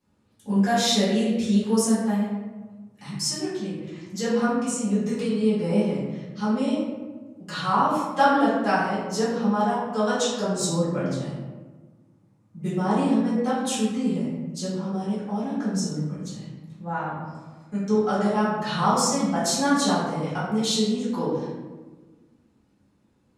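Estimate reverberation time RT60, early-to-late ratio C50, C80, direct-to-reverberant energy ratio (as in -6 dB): 1.3 s, 0.0 dB, 2.5 dB, -12.0 dB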